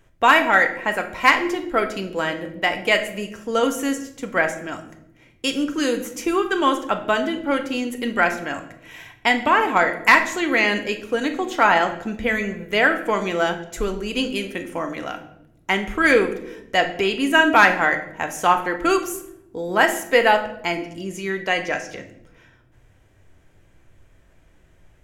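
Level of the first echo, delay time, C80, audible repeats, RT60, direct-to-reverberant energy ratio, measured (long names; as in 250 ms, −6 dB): no echo audible, no echo audible, 14.0 dB, no echo audible, 0.85 s, 6.5 dB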